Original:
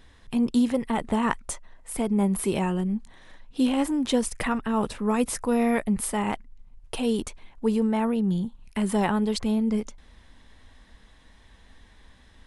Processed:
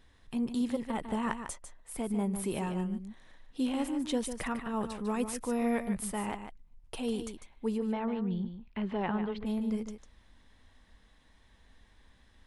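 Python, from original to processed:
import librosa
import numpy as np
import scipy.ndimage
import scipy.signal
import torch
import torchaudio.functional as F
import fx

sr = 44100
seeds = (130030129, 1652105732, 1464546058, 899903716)

y = fx.lowpass(x, sr, hz=fx.line((7.77, 5000.0), (9.45, 2900.0)), slope=24, at=(7.77, 9.45), fade=0.02)
y = y + 10.0 ** (-9.0 / 20.0) * np.pad(y, (int(149 * sr / 1000.0), 0))[:len(y)]
y = F.gain(torch.from_numpy(y), -8.5).numpy()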